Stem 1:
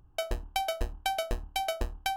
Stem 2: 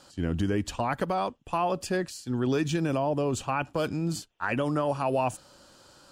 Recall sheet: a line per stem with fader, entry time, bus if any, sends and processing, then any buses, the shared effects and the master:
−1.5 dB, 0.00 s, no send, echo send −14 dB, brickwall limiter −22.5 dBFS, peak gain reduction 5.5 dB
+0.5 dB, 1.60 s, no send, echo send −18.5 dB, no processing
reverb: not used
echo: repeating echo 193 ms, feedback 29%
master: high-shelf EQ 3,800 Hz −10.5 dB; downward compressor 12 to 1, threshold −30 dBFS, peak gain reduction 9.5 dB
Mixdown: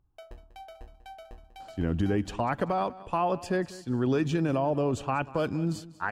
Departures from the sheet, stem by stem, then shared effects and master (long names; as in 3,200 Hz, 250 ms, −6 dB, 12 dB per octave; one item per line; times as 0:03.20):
stem 1 −1.5 dB → −12.0 dB
master: missing downward compressor 12 to 1, threshold −30 dBFS, peak gain reduction 9.5 dB